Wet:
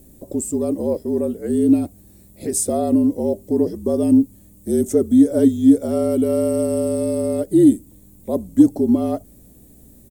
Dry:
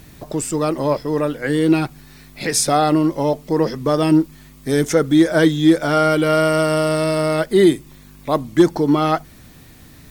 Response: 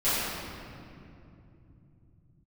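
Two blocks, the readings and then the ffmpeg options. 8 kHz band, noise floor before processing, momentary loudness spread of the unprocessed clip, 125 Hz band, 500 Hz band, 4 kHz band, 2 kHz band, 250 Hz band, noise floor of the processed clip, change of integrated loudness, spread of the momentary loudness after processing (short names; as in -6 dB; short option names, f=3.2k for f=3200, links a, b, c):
-2.0 dB, -44 dBFS, 9 LU, -7.0 dB, -3.0 dB, under -15 dB, under -20 dB, +1.5 dB, -48 dBFS, -1.0 dB, 12 LU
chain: -af "afreqshift=-50,firequalizer=gain_entry='entry(100,0);entry(270,10);entry(610,5);entry(870,-7);entry(1400,-15);entry(3400,-10);entry(5100,-8);entry(7800,8)':delay=0.05:min_phase=1,aeval=exprs='val(0)+0.00708*(sin(2*PI*60*n/s)+sin(2*PI*2*60*n/s)/2+sin(2*PI*3*60*n/s)/3+sin(2*PI*4*60*n/s)/4+sin(2*PI*5*60*n/s)/5)':c=same,volume=-8.5dB"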